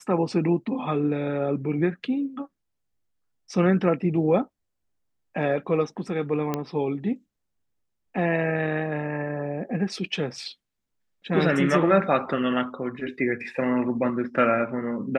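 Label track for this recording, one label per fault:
6.540000	6.540000	pop -13 dBFS

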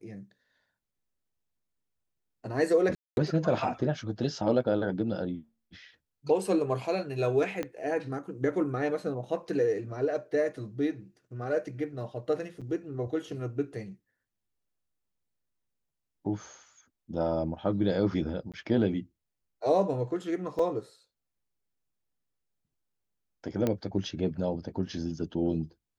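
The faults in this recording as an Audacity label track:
2.950000	3.170000	gap 0.221 s
7.630000	7.630000	pop -19 dBFS
12.610000	12.620000	gap 6 ms
18.520000	18.540000	gap 17 ms
20.590000	20.590000	gap 3.6 ms
23.670000	23.670000	pop -15 dBFS

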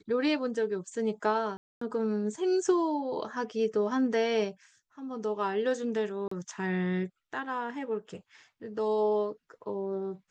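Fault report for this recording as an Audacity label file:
1.570000	1.810000	gap 0.244 s
6.280000	6.310000	gap 34 ms

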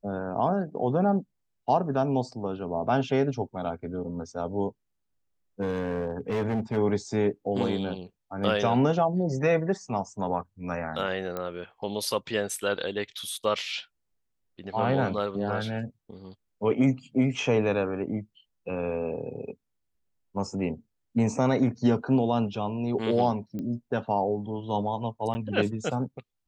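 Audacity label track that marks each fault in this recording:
5.610000	6.780000	clipped -24 dBFS
11.370000	11.370000	pop -19 dBFS
23.590000	23.590000	pop -24 dBFS
25.340000	25.350000	gap 10 ms

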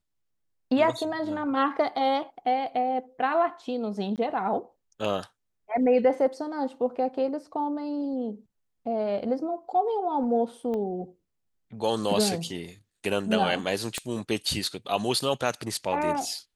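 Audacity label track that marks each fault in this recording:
4.160000	4.180000	gap 18 ms
10.740000	10.740000	pop -23 dBFS
13.980000	13.980000	pop -15 dBFS

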